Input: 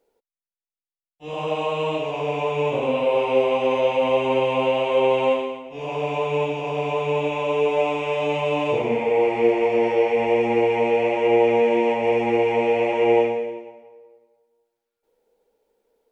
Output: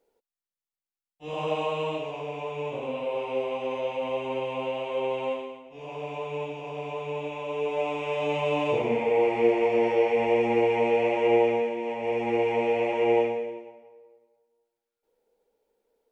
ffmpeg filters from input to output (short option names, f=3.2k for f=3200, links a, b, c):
-af "volume=11.5dB,afade=t=out:st=1.51:d=0.78:silence=0.446684,afade=t=in:st=7.47:d=1:silence=0.473151,afade=t=out:st=11.36:d=0.4:silence=0.334965,afade=t=in:st=11.76:d=0.64:silence=0.398107"